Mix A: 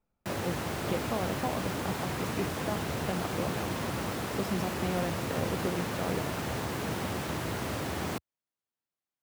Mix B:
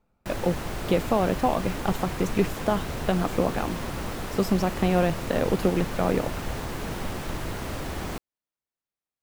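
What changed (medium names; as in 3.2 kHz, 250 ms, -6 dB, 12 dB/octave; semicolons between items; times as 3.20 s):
speech +10.5 dB; background: remove high-pass 79 Hz 24 dB/octave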